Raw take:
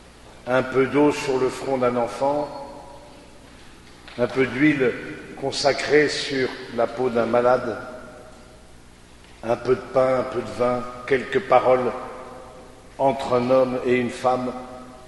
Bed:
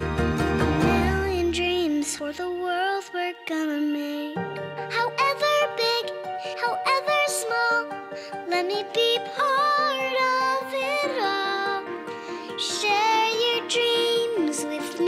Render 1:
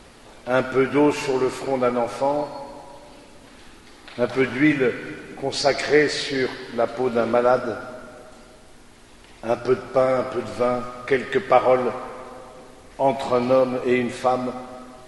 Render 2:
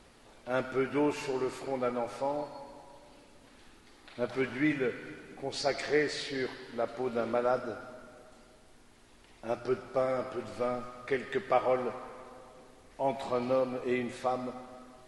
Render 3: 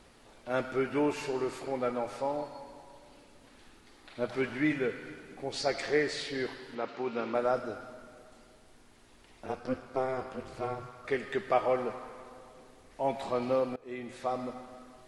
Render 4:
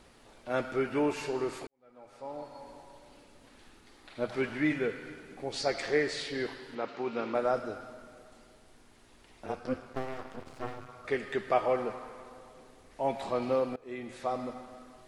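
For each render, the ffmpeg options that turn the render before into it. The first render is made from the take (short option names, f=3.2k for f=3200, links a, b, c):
-af "bandreject=f=60:t=h:w=4,bandreject=f=120:t=h:w=4,bandreject=f=180:t=h:w=4"
-af "volume=-11dB"
-filter_complex "[0:a]asettb=1/sr,asplit=3[a][b][c];[a]atrim=end=6.754[d];[b]atrim=start=6.75:end=7.35,asetpts=PTS-STARTPTS,afade=t=in:d=0.004:c=qsin,afade=t=out:st=0.596:d=0.004:c=qsin,highpass=150,equalizer=f=610:t=q:w=4:g=-8,equalizer=f=920:t=q:w=4:g=4,equalizer=f=2.6k:t=q:w=4:g=6,lowpass=f=6.2k:w=0.5412,lowpass=f=6.2k:w=1.3066[e];[c]atrim=start=7.346[f];[d][e]acrossfade=d=0.004:c1=hsin:c2=qsin[g];[g][f]acrossfade=d=0.004:c1=qsin:c2=hsin,asettb=1/sr,asplit=3[h][i][j];[h]atrim=end=9.464[k];[i]atrim=start=9.46:end=11.05,asetpts=PTS-STARTPTS,afade=t=in:d=0.004:c=qsin,afade=t=out:st=1.586:d=0.004:c=qsin,aeval=exprs='val(0)*sin(2*PI*130*n/s)':c=same[l];[j]atrim=start=11.046[m];[k][l]acrossfade=d=0.004:c1=hsin:c2=qsin[n];[n][m]acrossfade=d=0.004:c1=qsin:c2=hsin,asplit=2[o][p];[o]atrim=end=13.76,asetpts=PTS-STARTPTS,afade=t=out:st=13.756:d=0.004:c=hsin:silence=0.0794328[q];[p]atrim=start=13.76,asetpts=PTS-STARTPTS,afade=t=in:d=0.65:silence=0.0794328[r];[q][r]concat=n=2:v=0:a=1"
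-filter_complex "[0:a]asettb=1/sr,asplit=3[a][b][c];[a]atrim=end=9.934[d];[b]atrim=start=9.93:end=10.89,asetpts=PTS-STARTPTS,afade=t=in:d=0.004:c=qsin,afade=t=out:st=0.956:d=0.004:c=qsin,aeval=exprs='max(val(0),0)':c=same[e];[c]atrim=start=10.886[f];[d][e]acrossfade=d=0.004:c1=hsin:c2=qsin[g];[g][f]acrossfade=d=0.004:c1=qsin:c2=hsin,asplit=2[h][i];[h]atrim=end=1.67,asetpts=PTS-STARTPTS,afade=t=out:st=1.666:d=0.004:c=hsin[j];[i]atrim=start=1.67,asetpts=PTS-STARTPTS,afade=t=in:d=1.02:c=qua[k];[j][k]concat=n=2:v=0:a=1"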